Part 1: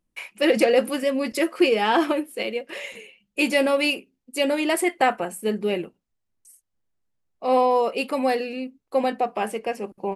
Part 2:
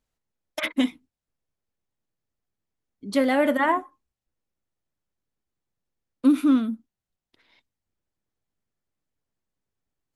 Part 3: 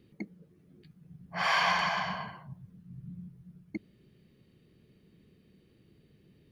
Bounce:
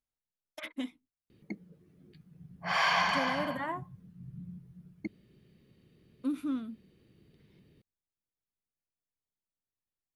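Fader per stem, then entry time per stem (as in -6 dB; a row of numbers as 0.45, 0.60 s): off, -14.5 dB, -0.5 dB; off, 0.00 s, 1.30 s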